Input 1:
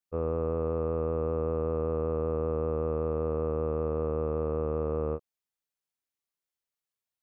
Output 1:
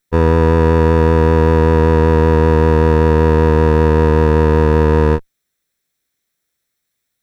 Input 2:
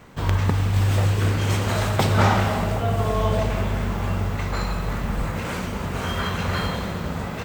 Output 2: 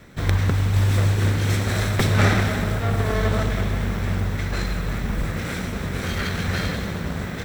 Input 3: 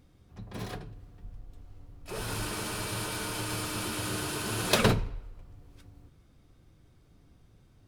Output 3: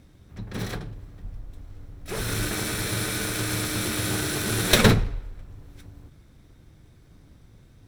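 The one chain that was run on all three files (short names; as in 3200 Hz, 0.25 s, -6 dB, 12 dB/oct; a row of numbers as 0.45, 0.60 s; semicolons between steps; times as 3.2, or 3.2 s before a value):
minimum comb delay 0.52 ms; normalise peaks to -2 dBFS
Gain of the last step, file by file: +18.0, +1.0, +8.0 dB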